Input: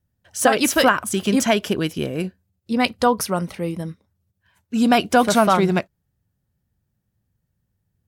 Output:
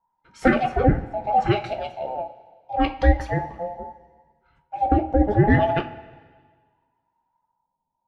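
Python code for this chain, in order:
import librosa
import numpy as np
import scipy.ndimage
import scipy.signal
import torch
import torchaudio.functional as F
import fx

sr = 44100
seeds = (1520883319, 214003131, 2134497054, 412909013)

y = fx.band_invert(x, sr, width_hz=1000)
y = fx.band_shelf(y, sr, hz=1400.0, db=-11.5, octaves=1.7, at=(1.65, 2.06), fade=0.02)
y = fx.filter_lfo_lowpass(y, sr, shape='sine', hz=0.73, low_hz=560.0, high_hz=2600.0, q=0.93)
y = fx.low_shelf_res(y, sr, hz=280.0, db=8.0, q=1.5)
y = fx.rev_double_slope(y, sr, seeds[0], early_s=0.24, late_s=1.6, knee_db=-17, drr_db=4.0)
y = F.gain(torch.from_numpy(y), -4.0).numpy()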